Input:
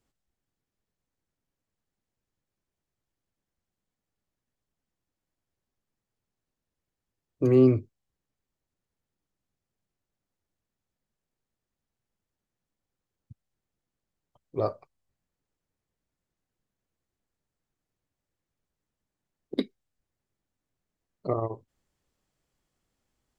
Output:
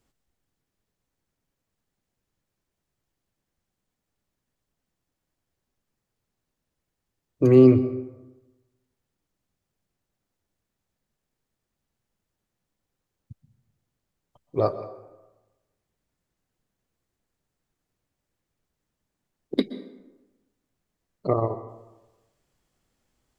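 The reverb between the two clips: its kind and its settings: plate-style reverb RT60 1.1 s, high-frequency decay 0.55×, pre-delay 110 ms, DRR 13.5 dB; trim +5 dB

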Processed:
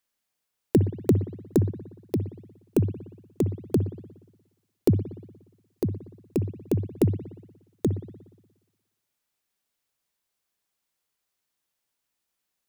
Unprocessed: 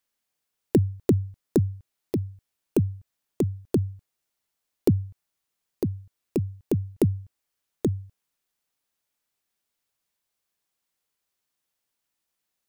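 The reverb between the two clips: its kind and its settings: spring tank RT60 1.1 s, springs 59 ms, chirp 65 ms, DRR 11 dB

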